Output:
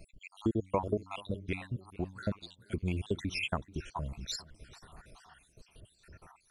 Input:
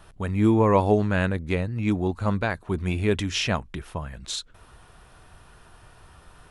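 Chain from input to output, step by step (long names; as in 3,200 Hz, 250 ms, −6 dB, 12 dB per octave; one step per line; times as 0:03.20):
time-frequency cells dropped at random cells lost 73%
downward compressor 2 to 1, threshold −34 dBFS, peak gain reduction 11 dB
0:00.53–0:02.23: hum removal 94.17 Hz, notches 3
feedback echo with a swinging delay time 432 ms, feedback 49%, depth 110 cents, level −20.5 dB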